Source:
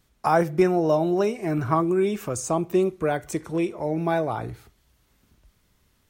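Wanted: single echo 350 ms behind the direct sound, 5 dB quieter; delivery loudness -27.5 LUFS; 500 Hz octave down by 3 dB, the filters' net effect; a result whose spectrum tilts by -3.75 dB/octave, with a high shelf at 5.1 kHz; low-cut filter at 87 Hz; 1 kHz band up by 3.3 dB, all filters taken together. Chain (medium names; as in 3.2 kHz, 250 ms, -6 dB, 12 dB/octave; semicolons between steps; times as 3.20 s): high-pass 87 Hz; peaking EQ 500 Hz -6.5 dB; peaking EQ 1 kHz +7 dB; treble shelf 5.1 kHz -6.5 dB; delay 350 ms -5 dB; trim -3.5 dB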